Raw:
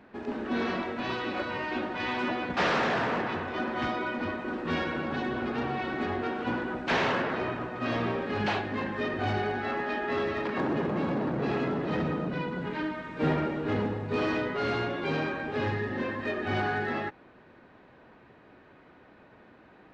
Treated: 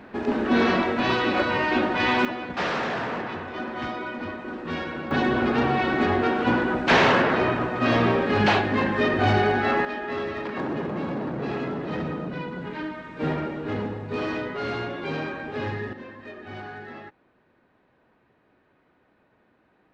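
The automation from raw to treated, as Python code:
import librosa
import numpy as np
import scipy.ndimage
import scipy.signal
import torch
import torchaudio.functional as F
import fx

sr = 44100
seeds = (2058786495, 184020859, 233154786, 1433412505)

y = fx.gain(x, sr, db=fx.steps((0.0, 9.5), (2.25, -0.5), (5.11, 9.0), (9.85, 0.0), (15.93, -9.0)))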